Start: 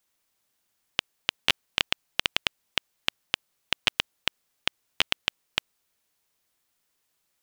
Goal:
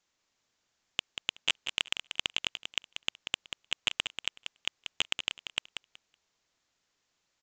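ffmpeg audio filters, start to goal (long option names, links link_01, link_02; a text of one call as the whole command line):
ffmpeg -i in.wav -af "aresample=16000,asoftclip=type=hard:threshold=-12.5dB,aresample=44100,aecho=1:1:187|374|561:0.398|0.0677|0.0115" out.wav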